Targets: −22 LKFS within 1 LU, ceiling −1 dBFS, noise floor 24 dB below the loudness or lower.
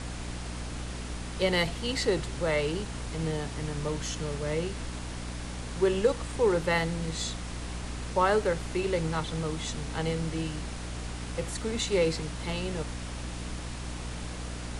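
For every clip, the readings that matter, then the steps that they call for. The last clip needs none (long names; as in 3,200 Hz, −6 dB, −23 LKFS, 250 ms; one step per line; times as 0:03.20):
mains hum 60 Hz; hum harmonics up to 300 Hz; level of the hum −36 dBFS; background noise floor −38 dBFS; target noise floor −55 dBFS; integrated loudness −31.0 LKFS; sample peak −11.5 dBFS; target loudness −22.0 LKFS
→ mains-hum notches 60/120/180/240/300 Hz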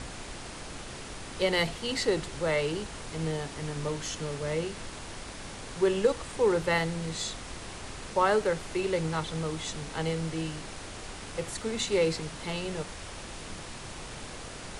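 mains hum none found; background noise floor −42 dBFS; target noise floor −56 dBFS
→ noise reduction from a noise print 14 dB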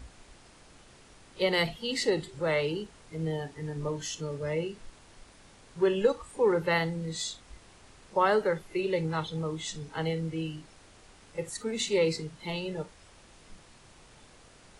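background noise floor −56 dBFS; integrated loudness −30.5 LKFS; sample peak −12.0 dBFS; target loudness −22.0 LKFS
→ level +8.5 dB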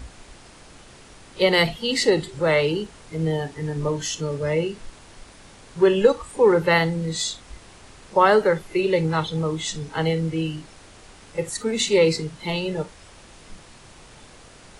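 integrated loudness −22.0 LKFS; sample peak −3.5 dBFS; background noise floor −48 dBFS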